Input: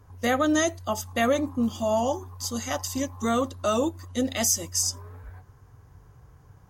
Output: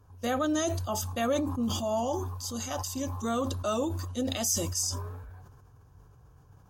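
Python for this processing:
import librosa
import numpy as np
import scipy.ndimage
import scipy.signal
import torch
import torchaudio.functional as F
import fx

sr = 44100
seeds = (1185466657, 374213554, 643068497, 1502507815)

y = fx.peak_eq(x, sr, hz=2000.0, db=-13.0, octaves=0.2)
y = fx.sustainer(y, sr, db_per_s=36.0)
y = y * 10.0 ** (-5.5 / 20.0)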